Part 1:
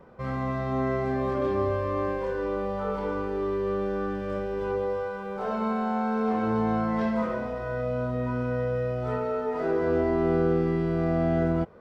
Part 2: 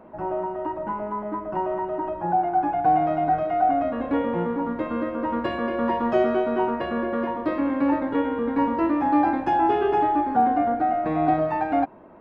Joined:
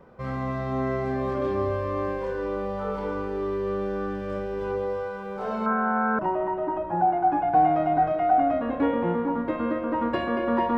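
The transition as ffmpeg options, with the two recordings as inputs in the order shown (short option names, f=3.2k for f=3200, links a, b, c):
-filter_complex "[0:a]asettb=1/sr,asplit=3[a][b][c];[a]atrim=end=5.664[d];[b]atrim=start=5.66:end=6.19,asetpts=PTS-STARTPTS,afade=t=in:d=0.004:c=qsin,afade=t=out:st=0.526:d=0.004:c=qsin,lowpass=f=1.5k:t=q:w=4.3[e];[c]atrim=start=6.186[f];[d][e]acrossfade=d=0.004:c1=hsin:c2=qsin[g];[g][f]acrossfade=d=0.004:c1=qsin:c2=hsin,apad=whole_dur=10.77,atrim=end=10.77,atrim=end=6.192[h];[1:a]atrim=start=1.498:end=6.08[i];[h][i]acrossfade=d=0.004:c1=hsin:c2=hsin"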